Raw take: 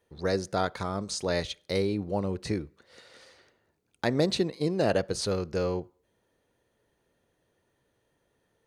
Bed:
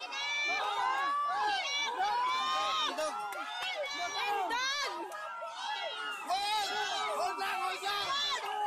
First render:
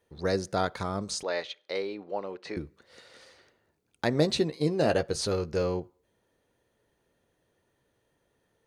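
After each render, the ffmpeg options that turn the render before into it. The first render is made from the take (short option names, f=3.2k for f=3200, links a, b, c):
-filter_complex "[0:a]asettb=1/sr,asplit=3[a][b][c];[a]atrim=end=1.234[d];[b]atrim=start=1.23:end=2.57,asetpts=PTS-STARTPTS,afade=t=in:d=0.004:c=qsin,afade=t=out:st=1.336:d=0.004:c=qsin,highpass=480,lowpass=3.6k[e];[c]atrim=start=2.566[f];[d][e]acrossfade=d=0.004:c1=hsin:c2=qsin[g];[g][f]acrossfade=d=0.004:c1=qsin:c2=hsin,asettb=1/sr,asplit=3[h][i][j];[h]atrim=end=4.124[k];[i]atrim=start=4.12:end=5.62,asetpts=PTS-STARTPTS,afade=t=in:d=0.004:c=qsin,afade=t=out:st=1.496:d=0.004:c=qsin,asplit=2[l][m];[m]adelay=13,volume=-9dB[n];[l][n]amix=inputs=2:normalize=0,atrim=end_sample=66150[o];[j]atrim=start=5.616[p];[k][o]acrossfade=d=0.004:c1=hsin:c2=qsin[q];[q][p]acrossfade=d=0.004:c1=qsin:c2=hsin"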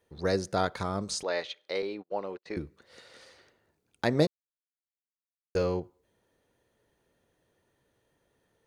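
-filter_complex "[0:a]asettb=1/sr,asplit=3[a][b][c];[a]atrim=end=1.824[d];[b]atrim=start=1.82:end=2.54,asetpts=PTS-STARTPTS,afade=t=in:d=0.004:c=qsin,afade=t=out:st=0.716:d=0.004:c=qsin,agate=range=-36dB:threshold=-43dB:ratio=16:release=100:detection=peak[e];[c]atrim=start=2.536[f];[d][e]acrossfade=d=0.004:c1=hsin:c2=qsin[g];[g][f]acrossfade=d=0.004:c1=qsin:c2=hsin,asplit=3[h][i][j];[h]atrim=end=4.27,asetpts=PTS-STARTPTS,afade=t=out:st=4.266:d=0.004:c=hsin[k];[i]atrim=start=4.27:end=5.55,asetpts=PTS-STARTPTS,volume=0[l];[j]atrim=start=5.55,asetpts=PTS-STARTPTS,afade=t=in:d=0.004:c=hsin[m];[k][l][m]concat=n=3:v=0:a=1"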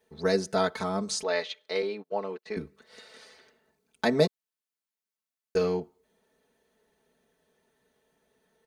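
-af "lowshelf=f=76:g=-10.5,aecho=1:1:4.6:0.92"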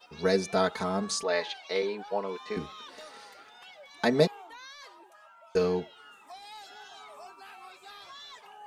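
-filter_complex "[1:a]volume=-14dB[a];[0:a][a]amix=inputs=2:normalize=0"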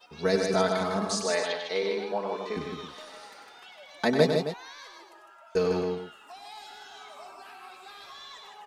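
-af "aecho=1:1:96.21|154.5|265.3:0.398|0.562|0.282"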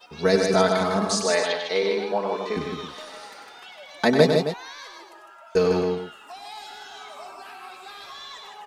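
-af "volume=5.5dB,alimiter=limit=-2dB:level=0:latency=1"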